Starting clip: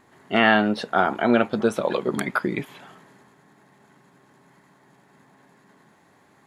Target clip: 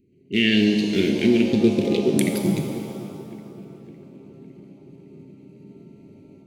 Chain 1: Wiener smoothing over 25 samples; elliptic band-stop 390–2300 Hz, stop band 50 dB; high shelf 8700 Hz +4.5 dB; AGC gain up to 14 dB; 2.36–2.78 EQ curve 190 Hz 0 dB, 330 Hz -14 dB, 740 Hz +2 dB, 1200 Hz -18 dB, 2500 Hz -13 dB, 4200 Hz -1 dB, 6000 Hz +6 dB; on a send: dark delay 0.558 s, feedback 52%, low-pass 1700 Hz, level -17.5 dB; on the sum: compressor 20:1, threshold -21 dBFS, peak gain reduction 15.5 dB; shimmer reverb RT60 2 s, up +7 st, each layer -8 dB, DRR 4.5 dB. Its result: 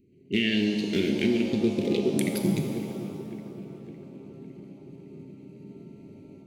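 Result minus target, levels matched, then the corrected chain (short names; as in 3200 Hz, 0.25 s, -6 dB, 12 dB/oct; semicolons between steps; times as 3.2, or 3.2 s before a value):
compressor: peak gain reduction +7.5 dB
Wiener smoothing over 25 samples; elliptic band-stop 390–2300 Hz, stop band 50 dB; high shelf 8700 Hz +4.5 dB; AGC gain up to 14 dB; 2.36–2.78 EQ curve 190 Hz 0 dB, 330 Hz -14 dB, 740 Hz +2 dB, 1200 Hz -18 dB, 2500 Hz -13 dB, 4200 Hz -1 dB, 6000 Hz +6 dB; on a send: dark delay 0.558 s, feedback 52%, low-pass 1700 Hz, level -17.5 dB; on the sum: compressor 20:1, threshold -13 dBFS, peak gain reduction 8 dB; shimmer reverb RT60 2 s, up +7 st, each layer -8 dB, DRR 4.5 dB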